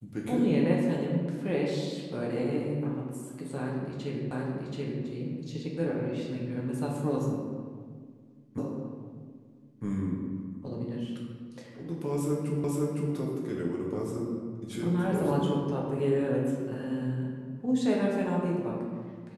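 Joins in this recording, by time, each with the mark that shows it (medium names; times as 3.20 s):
4.31 s: repeat of the last 0.73 s
8.58 s: repeat of the last 1.26 s
12.64 s: repeat of the last 0.51 s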